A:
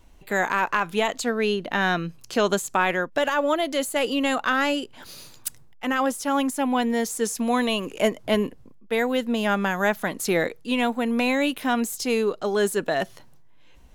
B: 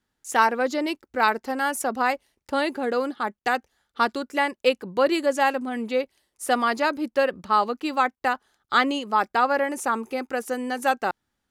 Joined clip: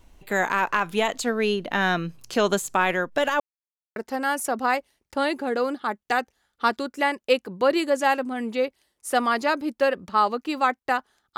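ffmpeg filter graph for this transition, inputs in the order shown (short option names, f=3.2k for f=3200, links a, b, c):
-filter_complex "[0:a]apad=whole_dur=11.37,atrim=end=11.37,asplit=2[a][b];[a]atrim=end=3.4,asetpts=PTS-STARTPTS,afade=t=out:st=3.396:d=0.004:c=hsin[c];[b]atrim=start=3.4:end=3.96,asetpts=PTS-STARTPTS,volume=0[d];[1:a]atrim=start=1.32:end=8.73,asetpts=PTS-STARTPTS,afade=t=in:d=0.004:c=hsin[e];[c][d][e]concat=n=3:v=0:a=1"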